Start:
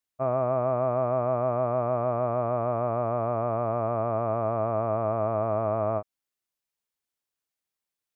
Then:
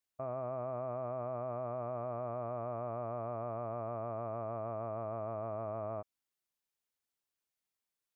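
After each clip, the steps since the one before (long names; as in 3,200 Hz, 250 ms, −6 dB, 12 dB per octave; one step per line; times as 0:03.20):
brickwall limiter −26.5 dBFS, peak gain reduction 11 dB
level −3 dB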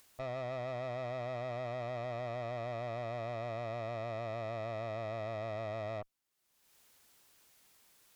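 upward compression, threshold −50 dBFS
tube saturation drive 43 dB, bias 0.7
level +7 dB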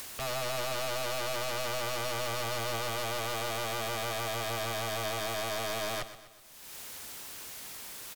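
sine wavefolder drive 18 dB, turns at −31.5 dBFS
repeating echo 125 ms, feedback 50%, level −13 dB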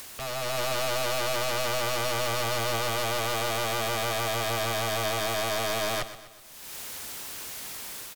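automatic gain control gain up to 5.5 dB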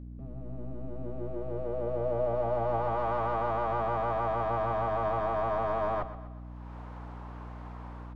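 low-pass filter sweep 250 Hz → 990 Hz, 0:00.73–0:03.09
mains hum 60 Hz, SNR 11 dB
level −3.5 dB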